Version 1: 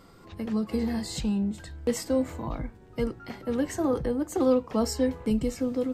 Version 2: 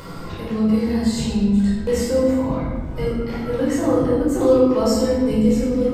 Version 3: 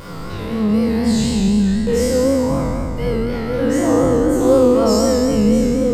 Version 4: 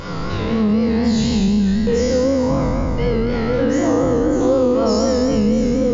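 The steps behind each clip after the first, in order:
upward compressor, threshold -30 dBFS; simulated room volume 1000 m³, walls mixed, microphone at 4.9 m; trim -2 dB
spectral sustain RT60 2.32 s; vibrato 4 Hz 69 cents
compression 3:1, threshold -20 dBFS, peak gain reduction 9 dB; brick-wall FIR low-pass 7.2 kHz; trim +5 dB

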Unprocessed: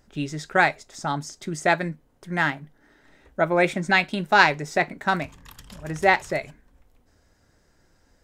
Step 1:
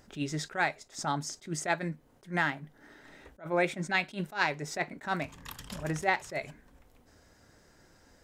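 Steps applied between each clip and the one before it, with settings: bass shelf 67 Hz -9 dB; compression 2:1, threshold -36 dBFS, peak gain reduction 14 dB; attacks held to a fixed rise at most 240 dB/s; trim +3.5 dB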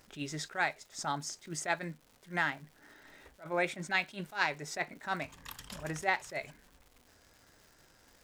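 bass shelf 380 Hz -10 dB; crackle 280 per s -48 dBFS; bass shelf 160 Hz +6.5 dB; trim -1.5 dB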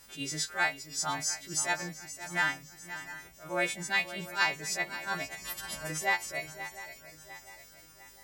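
partials quantised in pitch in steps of 2 st; shuffle delay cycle 701 ms, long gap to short 3:1, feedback 43%, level -13 dB; hum 50 Hz, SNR 34 dB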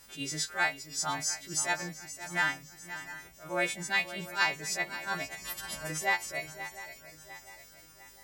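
no audible change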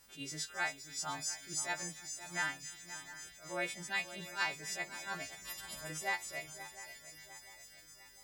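feedback echo behind a high-pass 275 ms, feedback 81%, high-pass 3.5 kHz, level -9.5 dB; trim -7.5 dB

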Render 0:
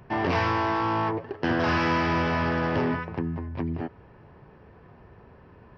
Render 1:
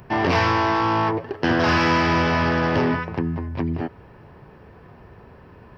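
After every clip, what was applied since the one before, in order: treble shelf 5.6 kHz +9.5 dB; trim +5 dB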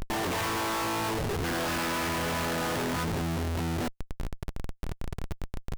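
compression, threshold -24 dBFS, peak gain reduction 8.5 dB; Schmitt trigger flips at -37.5 dBFS; trim -1 dB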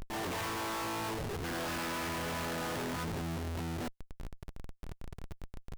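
peak limiter -28.5 dBFS, peak gain reduction 4.5 dB; trim -6.5 dB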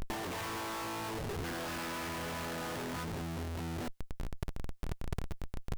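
compressor with a negative ratio -43 dBFS, ratio -1; trim +5.5 dB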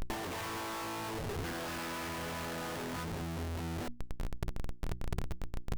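hysteresis with a dead band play -46 dBFS; hum notches 60/120/180/240/300/360 Hz; trim +1.5 dB

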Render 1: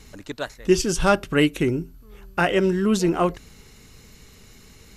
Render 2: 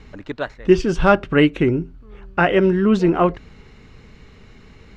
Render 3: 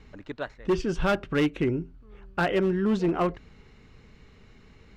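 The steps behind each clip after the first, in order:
low-pass 2.6 kHz 12 dB/octave; trim +4.5 dB
hard clipper -10.5 dBFS, distortion -13 dB; trim -8 dB

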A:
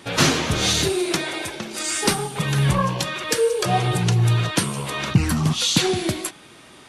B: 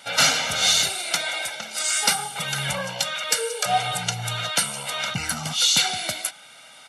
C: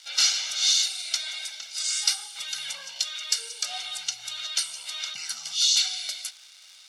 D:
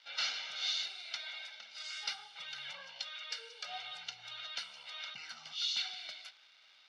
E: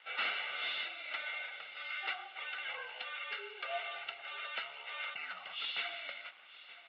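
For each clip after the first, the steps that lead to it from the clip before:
high-pass 1.1 kHz 6 dB/octave; comb 1.4 ms, depth 89%
crackle 460 per s -32 dBFS; band-pass filter 5 kHz, Q 1.8; trim +1 dB
distance through air 310 m; trim -3.5 dB
hard clipper -32 dBFS, distortion -14 dB; mistuned SSB -51 Hz 280–2900 Hz; delay 923 ms -17.5 dB; trim +7 dB

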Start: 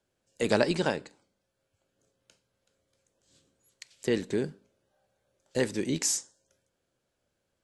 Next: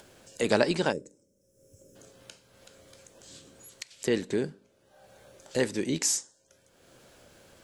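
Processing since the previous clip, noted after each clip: time-frequency box 0.92–1.96 s, 610–5100 Hz -22 dB; bass shelf 150 Hz -4 dB; in parallel at +0.5 dB: upward compressor, threshold -29 dBFS; on the sum: trim -5 dB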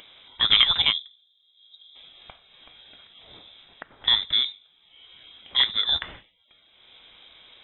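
frequency inversion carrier 3.8 kHz; trim +5.5 dB

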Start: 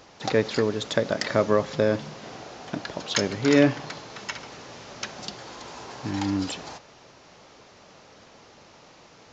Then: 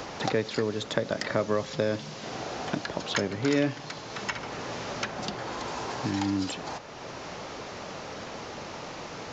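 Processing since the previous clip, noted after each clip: three bands compressed up and down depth 70%; trim -2.5 dB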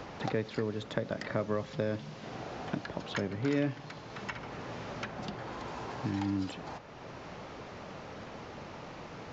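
tone controls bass +5 dB, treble -9 dB; trim -6.5 dB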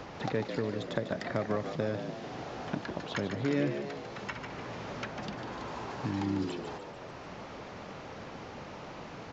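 frequency-shifting echo 148 ms, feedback 55%, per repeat +67 Hz, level -8 dB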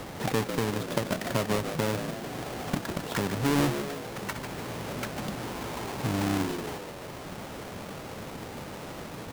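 square wave that keeps the level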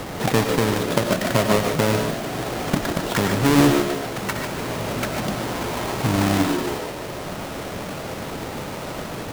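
reverberation, pre-delay 65 ms, DRR 4.5 dB; trim +8 dB

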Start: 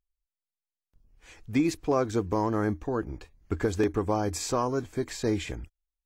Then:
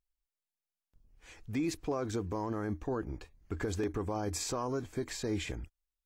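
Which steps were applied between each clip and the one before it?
peak limiter -22.5 dBFS, peak gain reduction 8.5 dB; trim -2.5 dB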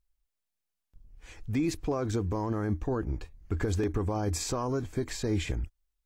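bass shelf 140 Hz +9 dB; trim +2.5 dB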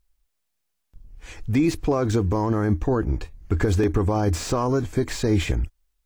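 slew-rate limiter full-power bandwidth 59 Hz; trim +8.5 dB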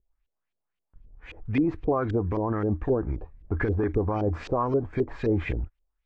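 LFO low-pass saw up 3.8 Hz 400–3100 Hz; trim -6 dB

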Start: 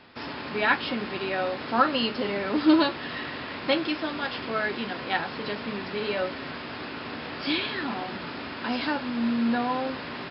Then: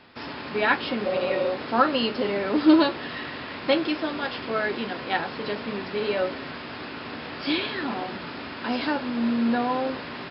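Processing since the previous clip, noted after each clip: spectral replace 1.08–1.46 s, 270–1800 Hz after; dynamic bell 450 Hz, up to +4 dB, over -36 dBFS, Q 0.9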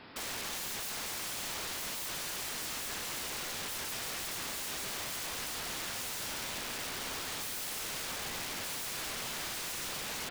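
pre-echo 135 ms -24 dB; peak limiter -18 dBFS, peak gain reduction 11 dB; integer overflow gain 34 dB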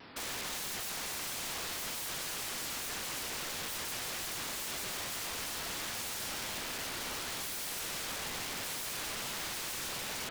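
vibrato with a chosen wave saw down 6.3 Hz, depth 160 cents

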